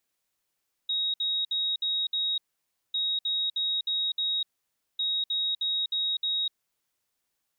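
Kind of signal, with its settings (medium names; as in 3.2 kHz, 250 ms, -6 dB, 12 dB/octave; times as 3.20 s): beep pattern sine 3.78 kHz, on 0.25 s, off 0.06 s, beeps 5, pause 0.56 s, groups 3, -25 dBFS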